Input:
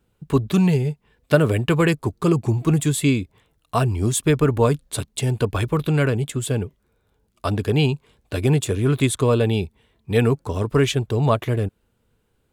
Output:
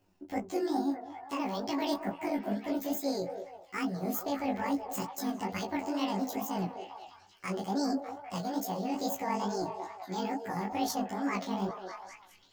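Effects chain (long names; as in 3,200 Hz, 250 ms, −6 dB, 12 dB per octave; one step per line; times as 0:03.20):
pitch shift by two crossfaded delay taps +11 semitones
brickwall limiter −11.5 dBFS, peak gain reduction 8 dB
reversed playback
downward compressor 6 to 1, threshold −28 dBFS, peak gain reduction 12 dB
reversed playback
echo through a band-pass that steps 201 ms, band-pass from 550 Hz, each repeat 0.7 octaves, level −3.5 dB
on a send at −13 dB: convolution reverb RT60 0.15 s, pre-delay 3 ms
on the sum: chorus effect 2.3 Hz, delay 17.5 ms, depth 6.7 ms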